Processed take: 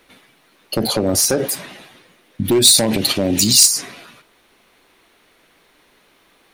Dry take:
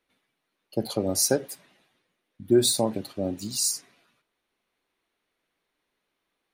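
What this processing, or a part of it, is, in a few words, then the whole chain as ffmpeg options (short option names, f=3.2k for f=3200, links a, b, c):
loud club master: -filter_complex "[0:a]acompressor=threshold=-26dB:ratio=2.5,asoftclip=type=hard:threshold=-22.5dB,alimiter=level_in=33dB:limit=-1dB:release=50:level=0:latency=1,asplit=3[a][b][c];[a]afade=t=out:st=2.44:d=0.02[d];[b]highshelf=f=1.8k:t=q:w=1.5:g=6.5,afade=t=in:st=2.44:d=0.02,afade=t=out:st=3.65:d=0.02[e];[c]afade=t=in:st=3.65:d=0.02[f];[d][e][f]amix=inputs=3:normalize=0,volume=-9dB"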